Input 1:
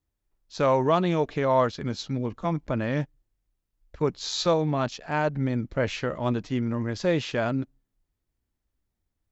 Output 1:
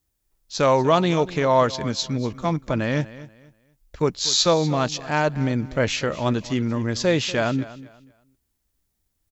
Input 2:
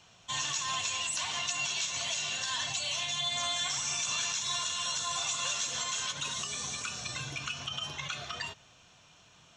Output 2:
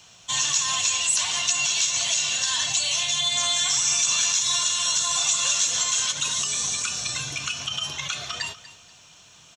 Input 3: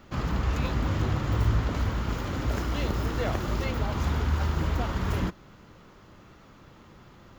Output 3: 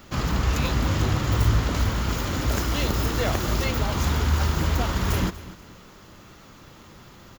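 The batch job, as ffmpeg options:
-filter_complex "[0:a]highshelf=f=4100:g=12,asplit=2[s0][s1];[s1]aecho=0:1:241|482|723:0.141|0.0381|0.0103[s2];[s0][s2]amix=inputs=2:normalize=0,volume=1.5"

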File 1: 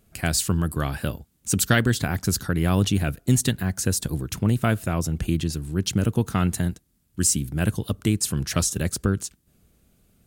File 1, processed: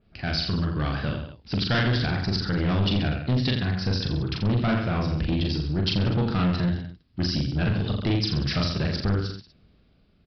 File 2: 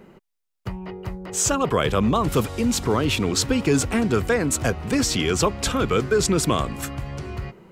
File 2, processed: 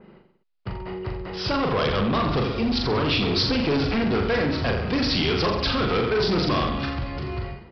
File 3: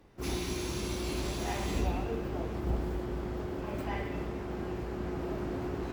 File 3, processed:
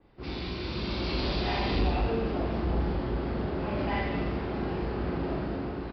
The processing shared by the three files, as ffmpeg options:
-af "aecho=1:1:40|84|132.4|185.6|244.2:0.631|0.398|0.251|0.158|0.1,dynaudnorm=f=130:g=13:m=2.24,aresample=11025,asoftclip=type=tanh:threshold=0.158,aresample=44100,adynamicequalizer=threshold=0.01:dfrequency=3400:dqfactor=0.7:tfrequency=3400:tqfactor=0.7:attack=5:release=100:ratio=0.375:range=2.5:mode=boostabove:tftype=highshelf,volume=0.75"

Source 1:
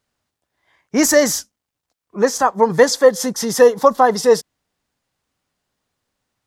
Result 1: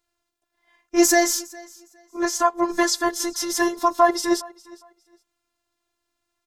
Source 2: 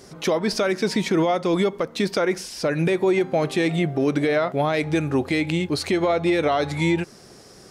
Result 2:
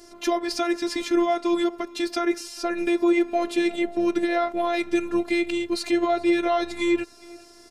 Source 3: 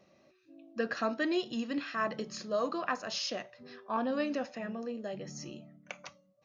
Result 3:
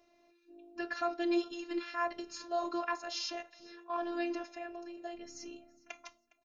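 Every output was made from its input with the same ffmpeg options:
-af "afftfilt=real='hypot(re,im)*cos(PI*b)':imag='0':win_size=512:overlap=0.75,aecho=1:1:410|820:0.0708|0.0149,volume=1.12"

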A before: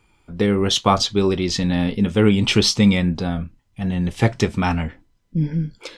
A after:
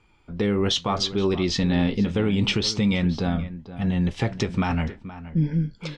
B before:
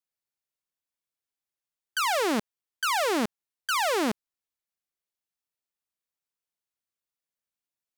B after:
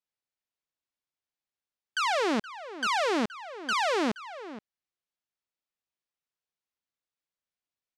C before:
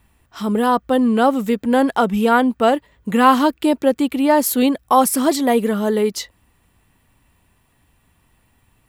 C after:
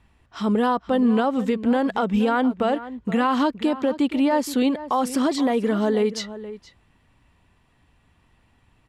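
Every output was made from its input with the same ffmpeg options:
-filter_complex "[0:a]lowpass=5600,alimiter=limit=0.251:level=0:latency=1:release=127,asplit=2[s0][s1];[s1]adelay=472.3,volume=0.2,highshelf=f=4000:g=-10.6[s2];[s0][s2]amix=inputs=2:normalize=0,volume=0.891"

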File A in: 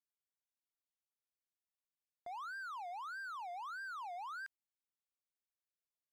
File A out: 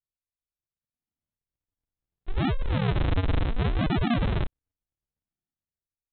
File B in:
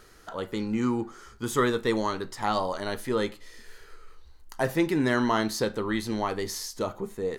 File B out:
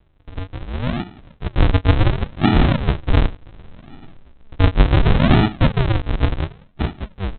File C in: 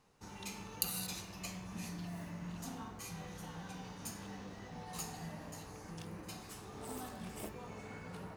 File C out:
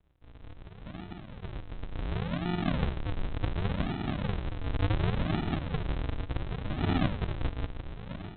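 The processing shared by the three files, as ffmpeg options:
-filter_complex "[0:a]dynaudnorm=f=440:g=7:m=5.62,asplit=2[s0][s1];[s1]highpass=f=720:p=1,volume=5.62,asoftclip=type=tanh:threshold=0.891[s2];[s0][s2]amix=inputs=2:normalize=0,lowpass=f=1600:p=1,volume=0.501,adynamicsmooth=sensitivity=2:basefreq=1300,aresample=8000,acrusher=samples=29:mix=1:aa=0.000001:lfo=1:lforange=29:lforate=0.69,aresample=44100"

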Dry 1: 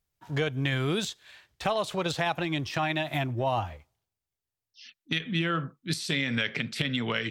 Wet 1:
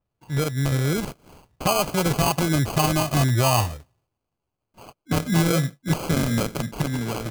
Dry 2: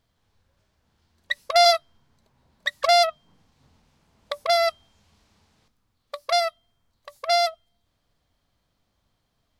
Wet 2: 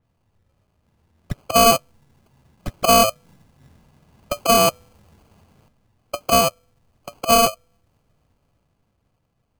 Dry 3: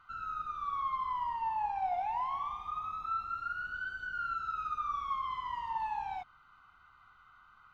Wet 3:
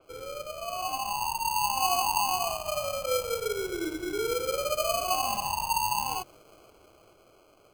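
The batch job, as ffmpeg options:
-filter_complex "[0:a]equalizer=f=130:t=o:w=1.4:g=6.5,dynaudnorm=f=240:g=11:m=2.11,asplit=2[s0][s1];[s1]asoftclip=type=hard:threshold=0.168,volume=0.631[s2];[s0][s2]amix=inputs=2:normalize=0,acrusher=samples=24:mix=1:aa=0.000001,adynamicequalizer=threshold=0.0224:dfrequency=4400:dqfactor=0.7:tfrequency=4400:tqfactor=0.7:attack=5:release=100:ratio=0.375:range=2.5:mode=boostabove:tftype=highshelf,volume=0.631"

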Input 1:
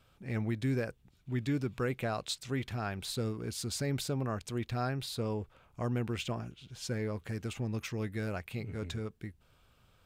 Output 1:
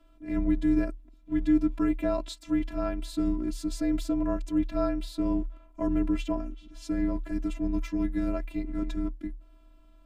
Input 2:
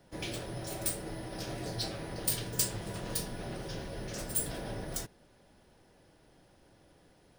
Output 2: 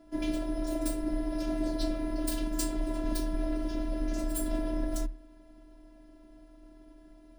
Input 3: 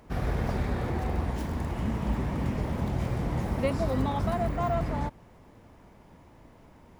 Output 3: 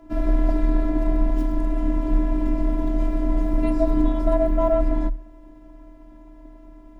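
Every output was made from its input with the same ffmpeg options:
-af "tiltshelf=f=1100:g=8.5,afftfilt=real='hypot(re,im)*cos(PI*b)':imag='0':win_size=512:overlap=0.75,afreqshift=-38,volume=2"

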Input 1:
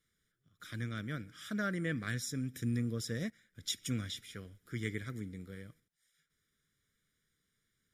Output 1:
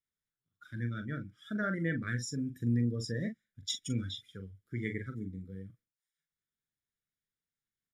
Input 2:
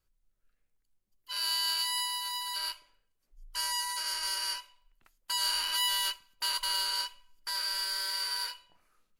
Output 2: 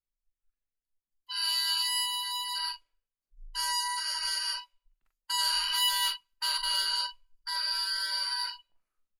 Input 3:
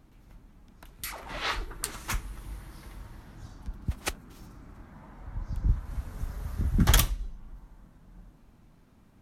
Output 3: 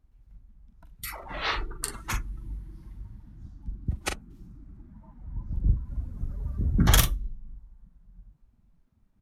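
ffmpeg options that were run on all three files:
-filter_complex "[0:a]asplit=2[s0][s1];[s1]adelay=42,volume=0.501[s2];[s0][s2]amix=inputs=2:normalize=0,afftdn=nr=19:nf=-41,volume=1.19"

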